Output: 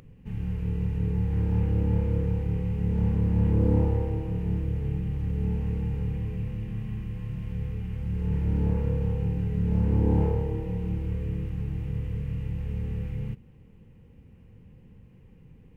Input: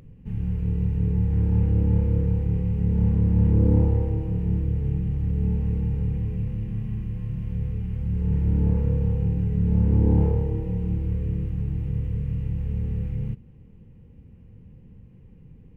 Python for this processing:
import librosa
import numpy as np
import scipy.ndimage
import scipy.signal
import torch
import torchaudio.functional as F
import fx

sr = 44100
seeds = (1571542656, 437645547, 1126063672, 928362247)

y = fx.low_shelf(x, sr, hz=480.0, db=-8.5)
y = y * librosa.db_to_amplitude(4.0)